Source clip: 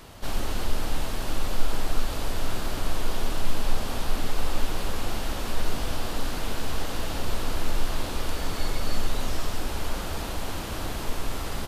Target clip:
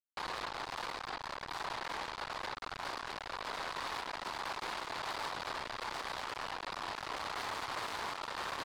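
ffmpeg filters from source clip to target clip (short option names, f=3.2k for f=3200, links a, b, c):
-af "aresample=8000,aresample=44100,areverse,acompressor=threshold=-27dB:ratio=4,areverse,acrusher=bits=4:mix=0:aa=0.5,highpass=f=620:p=1,asoftclip=type=tanh:threshold=-35dB,asetrate=59535,aresample=44100,equalizer=f=990:w=1.5:g=8,alimiter=level_in=14dB:limit=-24dB:level=0:latency=1:release=60,volume=-14dB,volume=6.5dB"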